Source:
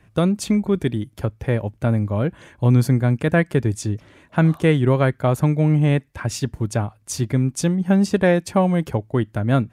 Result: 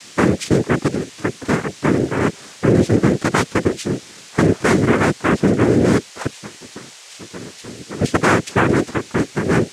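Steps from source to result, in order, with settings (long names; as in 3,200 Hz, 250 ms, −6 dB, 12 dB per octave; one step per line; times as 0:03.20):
in parallel at −3 dB: brickwall limiter −12 dBFS, peak gain reduction 7 dB
0:06.26–0:08.01: on the sum: tuned comb filter 400 Hz, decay 0.22 s, harmonics odd, mix 90%
steady tone 2,400 Hz −38 dBFS
cochlear-implant simulation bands 3
level −1.5 dB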